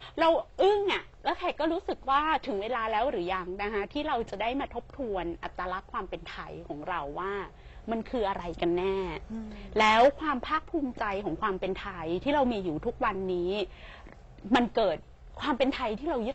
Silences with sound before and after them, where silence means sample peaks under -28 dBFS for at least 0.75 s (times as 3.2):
13.64–14.51